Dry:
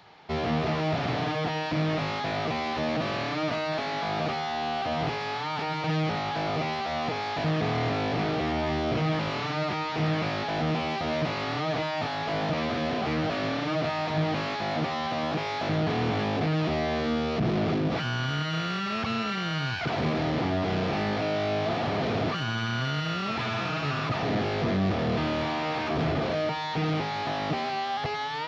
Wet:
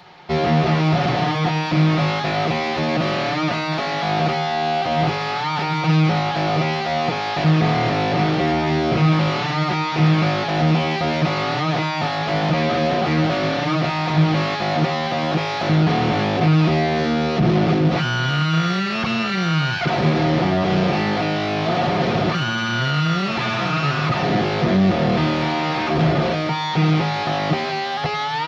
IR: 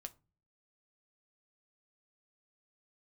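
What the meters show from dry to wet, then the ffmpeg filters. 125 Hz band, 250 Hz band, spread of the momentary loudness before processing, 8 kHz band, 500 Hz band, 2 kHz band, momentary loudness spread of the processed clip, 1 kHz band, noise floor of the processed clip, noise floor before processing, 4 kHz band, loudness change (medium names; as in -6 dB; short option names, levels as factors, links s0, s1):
+11.0 dB, +9.5 dB, 3 LU, no reading, +7.0 dB, +8.5 dB, 4 LU, +8.5 dB, -24 dBFS, -31 dBFS, +8.0 dB, +9.0 dB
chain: -filter_complex "[0:a]aecho=1:1:5.6:0.44,asplit=2[s0][s1];[1:a]atrim=start_sample=2205[s2];[s1][s2]afir=irnorm=-1:irlink=0,volume=2.66[s3];[s0][s3]amix=inputs=2:normalize=0"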